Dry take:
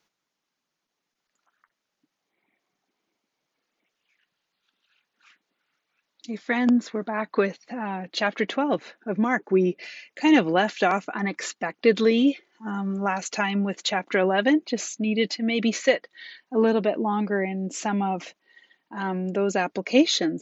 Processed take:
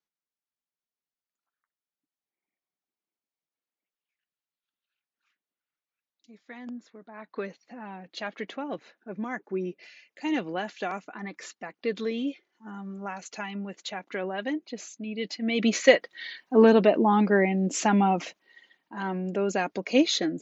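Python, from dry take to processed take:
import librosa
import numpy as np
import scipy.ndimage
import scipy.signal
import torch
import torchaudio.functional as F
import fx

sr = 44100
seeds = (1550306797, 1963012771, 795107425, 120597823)

y = fx.gain(x, sr, db=fx.line((6.99, -19.5), (7.49, -10.5), (15.15, -10.5), (15.48, -3.0), (15.94, 3.5), (18.03, 3.5), (18.96, -3.0)))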